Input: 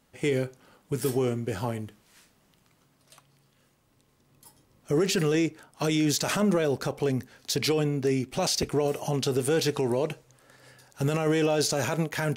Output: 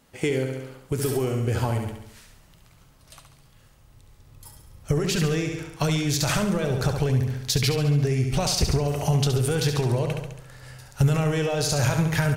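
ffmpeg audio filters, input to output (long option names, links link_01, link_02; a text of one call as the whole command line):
ffmpeg -i in.wav -af "aecho=1:1:69|138|207|276|345|414|483:0.473|0.251|0.133|0.0704|0.0373|0.0198|0.0105,acompressor=threshold=-27dB:ratio=4,asubboost=boost=10.5:cutoff=85,volume=6dB" out.wav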